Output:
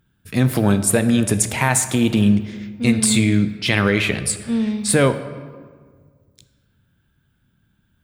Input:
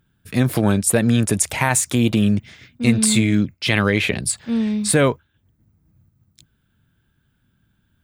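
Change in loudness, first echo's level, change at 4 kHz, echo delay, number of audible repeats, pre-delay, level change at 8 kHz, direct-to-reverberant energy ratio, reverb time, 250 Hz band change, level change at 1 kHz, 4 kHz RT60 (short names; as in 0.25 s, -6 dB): +0.5 dB, none, +0.5 dB, none, none, 13 ms, 0.0 dB, 10.0 dB, 1.7 s, +1.0 dB, +0.5 dB, 1.0 s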